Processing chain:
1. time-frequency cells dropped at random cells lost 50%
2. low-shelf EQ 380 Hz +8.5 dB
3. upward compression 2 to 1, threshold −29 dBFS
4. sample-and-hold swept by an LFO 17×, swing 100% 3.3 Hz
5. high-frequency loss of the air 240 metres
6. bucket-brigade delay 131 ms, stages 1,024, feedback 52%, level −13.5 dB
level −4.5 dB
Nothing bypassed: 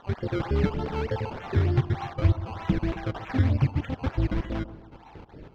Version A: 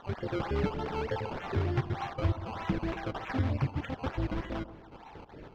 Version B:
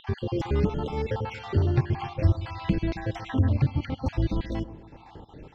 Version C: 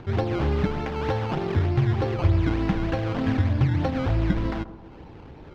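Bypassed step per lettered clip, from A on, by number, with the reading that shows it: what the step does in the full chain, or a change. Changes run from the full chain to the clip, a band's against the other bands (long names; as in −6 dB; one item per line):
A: 2, 125 Hz band −5.5 dB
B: 4, distortion level −8 dB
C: 1, change in crest factor −2.0 dB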